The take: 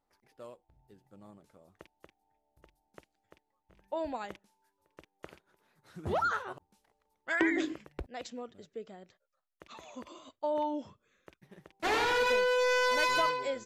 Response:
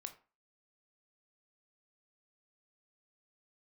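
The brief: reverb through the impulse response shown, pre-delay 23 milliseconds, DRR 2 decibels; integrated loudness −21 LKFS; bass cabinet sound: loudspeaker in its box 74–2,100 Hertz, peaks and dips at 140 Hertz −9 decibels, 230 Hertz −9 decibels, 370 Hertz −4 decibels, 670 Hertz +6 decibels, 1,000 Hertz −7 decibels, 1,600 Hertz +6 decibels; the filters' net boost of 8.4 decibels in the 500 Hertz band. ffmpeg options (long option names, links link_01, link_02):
-filter_complex "[0:a]equalizer=frequency=500:width_type=o:gain=8.5,asplit=2[link_01][link_02];[1:a]atrim=start_sample=2205,adelay=23[link_03];[link_02][link_03]afir=irnorm=-1:irlink=0,volume=2dB[link_04];[link_01][link_04]amix=inputs=2:normalize=0,highpass=frequency=74:width=0.5412,highpass=frequency=74:width=1.3066,equalizer=frequency=140:width_type=q:width=4:gain=-9,equalizer=frequency=230:width_type=q:width=4:gain=-9,equalizer=frequency=370:width_type=q:width=4:gain=-4,equalizer=frequency=670:width_type=q:width=4:gain=6,equalizer=frequency=1000:width_type=q:width=4:gain=-7,equalizer=frequency=1600:width_type=q:width=4:gain=6,lowpass=frequency=2100:width=0.5412,lowpass=frequency=2100:width=1.3066,volume=5.5dB"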